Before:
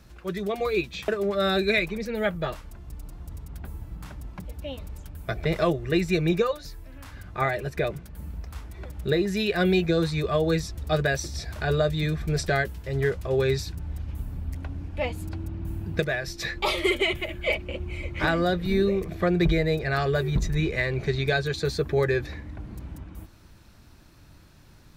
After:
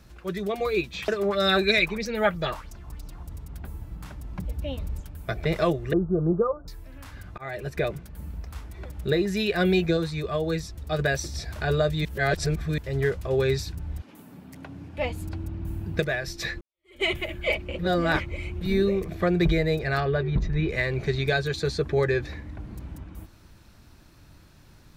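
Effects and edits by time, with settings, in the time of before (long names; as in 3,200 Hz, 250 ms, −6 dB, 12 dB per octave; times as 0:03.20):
0:00.95–0:03.23: auto-filter bell 3.1 Hz 880–6,200 Hz +12 dB
0:04.30–0:05.01: low-shelf EQ 270 Hz +7 dB
0:05.93–0:06.68: Butterworth low-pass 1,400 Hz 96 dB per octave
0:07.38–0:07.82: fade in equal-power
0:09.97–0:10.99: clip gain −3.5 dB
0:12.05–0:12.78: reverse
0:14.00–0:14.98: high-pass filter 250 Hz → 93 Hz 24 dB per octave
0:16.61–0:17.04: fade in exponential
0:17.79–0:18.61: reverse
0:20.00–0:20.69: high-frequency loss of the air 220 metres
0:21.63–0:22.27: low-pass filter 9,000 Hz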